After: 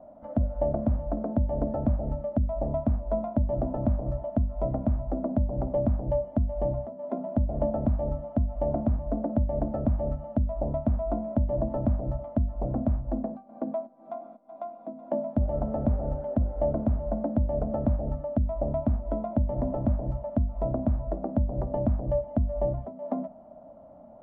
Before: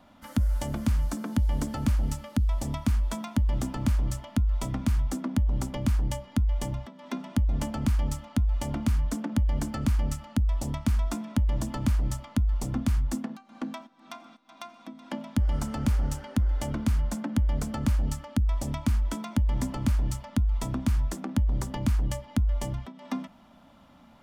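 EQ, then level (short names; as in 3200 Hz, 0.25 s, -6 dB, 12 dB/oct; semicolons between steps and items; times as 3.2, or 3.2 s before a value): synth low-pass 630 Hz, resonance Q 7; notches 50/100/150/200/250 Hz; 0.0 dB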